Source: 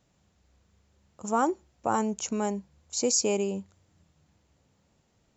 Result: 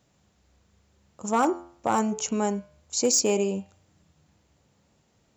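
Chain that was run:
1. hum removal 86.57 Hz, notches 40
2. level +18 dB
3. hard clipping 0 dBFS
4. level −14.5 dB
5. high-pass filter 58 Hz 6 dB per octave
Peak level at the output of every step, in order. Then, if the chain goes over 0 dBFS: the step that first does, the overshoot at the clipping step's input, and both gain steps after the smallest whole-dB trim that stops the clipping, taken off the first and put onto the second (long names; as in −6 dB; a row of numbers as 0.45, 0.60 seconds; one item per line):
−13.0, +5.0, 0.0, −14.5, −13.5 dBFS
step 2, 5.0 dB
step 2 +13 dB, step 4 −9.5 dB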